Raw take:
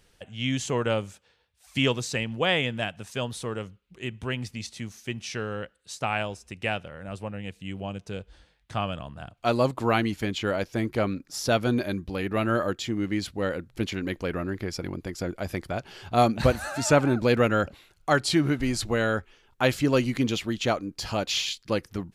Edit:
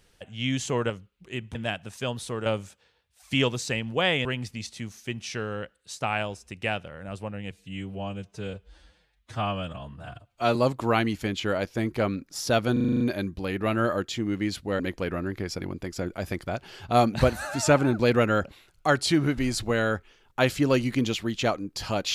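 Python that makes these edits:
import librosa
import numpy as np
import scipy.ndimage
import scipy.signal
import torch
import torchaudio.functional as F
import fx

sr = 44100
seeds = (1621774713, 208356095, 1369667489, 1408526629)

y = fx.edit(x, sr, fx.swap(start_s=0.9, length_s=1.79, other_s=3.6, other_length_s=0.65),
    fx.stretch_span(start_s=7.51, length_s=2.03, factor=1.5),
    fx.stutter(start_s=11.71, slice_s=0.04, count=8),
    fx.cut(start_s=13.5, length_s=0.52), tone=tone)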